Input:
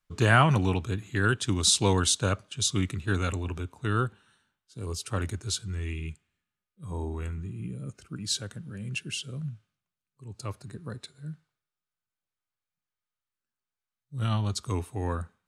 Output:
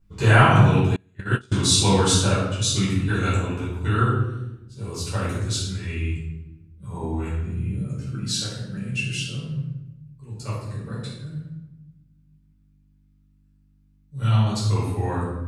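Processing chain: mains buzz 50 Hz, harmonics 6, -62 dBFS -7 dB/octave; simulated room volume 380 m³, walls mixed, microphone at 4.8 m; 0.96–1.54 s: gate -10 dBFS, range -31 dB; trim -6 dB

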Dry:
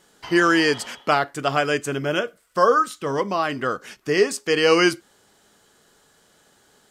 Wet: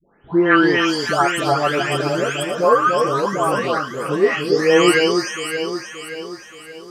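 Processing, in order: delay that grows with frequency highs late, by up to 571 ms; echo whose repeats swap between lows and highs 288 ms, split 1.3 kHz, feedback 68%, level -4.5 dB; trim +4 dB

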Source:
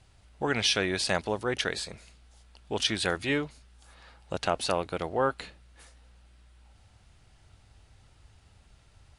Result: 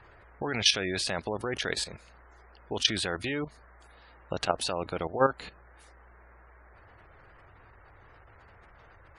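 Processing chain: band noise 320–1900 Hz -58 dBFS; spectral gate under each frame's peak -25 dB strong; level held to a coarse grid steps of 12 dB; trim +5 dB

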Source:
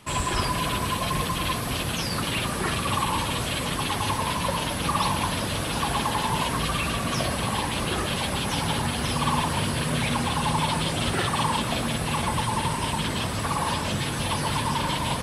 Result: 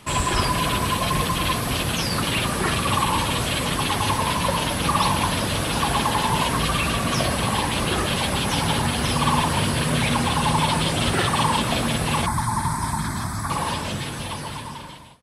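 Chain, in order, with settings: fade out at the end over 2.25 s; 12.26–13.50 s: static phaser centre 1.2 kHz, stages 4; trim +4 dB

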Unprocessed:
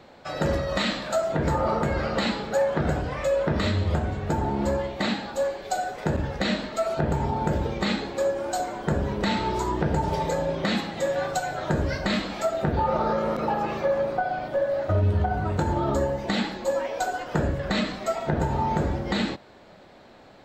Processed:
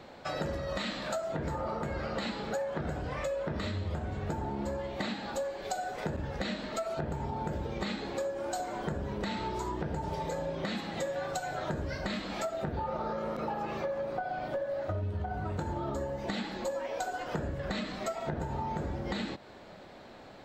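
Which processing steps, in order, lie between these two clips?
compression, threshold -32 dBFS, peak gain reduction 13 dB

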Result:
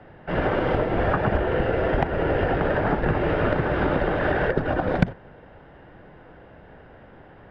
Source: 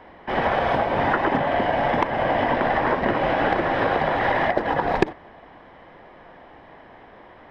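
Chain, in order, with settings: frequency shift -200 Hz; tone controls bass +4 dB, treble -6 dB; trim -2 dB

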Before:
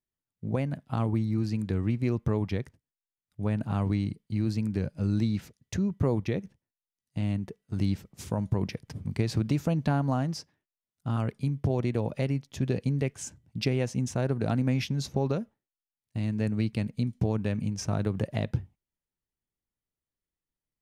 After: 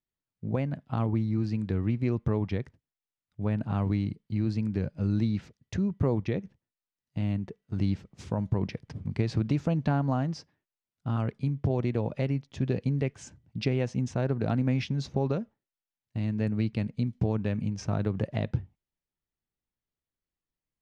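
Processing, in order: distance through air 110 m

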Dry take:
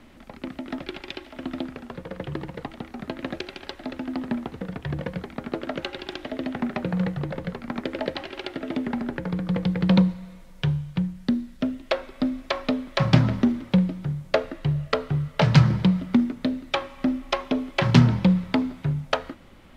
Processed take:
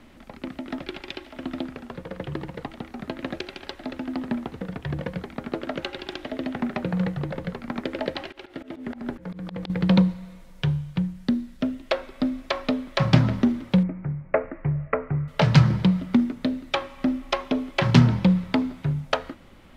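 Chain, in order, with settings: 8.26–9.70 s: slow attack 158 ms; 13.83–15.28 s: elliptic low-pass 2.3 kHz, stop band 40 dB

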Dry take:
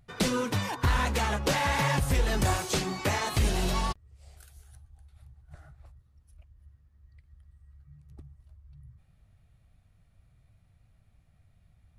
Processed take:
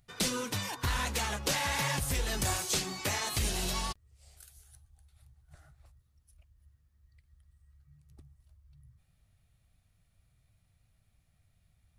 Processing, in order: treble shelf 2.8 kHz +11.5 dB; trim -7.5 dB

